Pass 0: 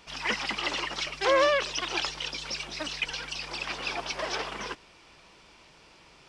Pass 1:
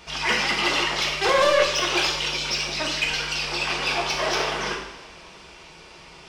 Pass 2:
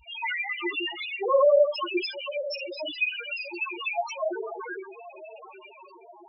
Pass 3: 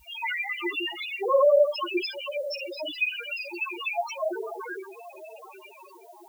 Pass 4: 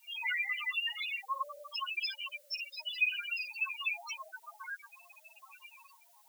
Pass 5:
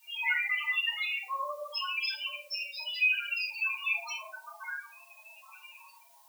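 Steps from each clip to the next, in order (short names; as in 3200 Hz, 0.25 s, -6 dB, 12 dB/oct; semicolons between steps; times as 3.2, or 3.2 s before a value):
soft clip -23 dBFS, distortion -10 dB; two-slope reverb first 0.74 s, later 2.7 s, from -18 dB, DRR -1.5 dB; gain +6 dB
diffused feedback echo 0.97 s, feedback 50%, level -12 dB; loudest bins only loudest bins 2; gain +4 dB
added noise blue -62 dBFS
inverse Chebyshev high-pass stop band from 450 Hz, stop band 50 dB; gain -3 dB
shoebox room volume 310 m³, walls furnished, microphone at 2.6 m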